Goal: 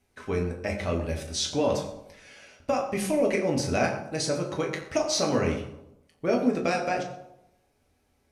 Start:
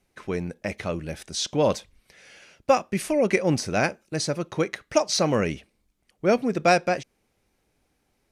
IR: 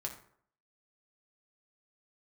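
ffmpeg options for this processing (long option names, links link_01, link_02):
-filter_complex "[0:a]acompressor=threshold=-21dB:ratio=6[link_01];[1:a]atrim=start_sample=2205,asetrate=29106,aresample=44100[link_02];[link_01][link_02]afir=irnorm=-1:irlink=0,volume=-1.5dB"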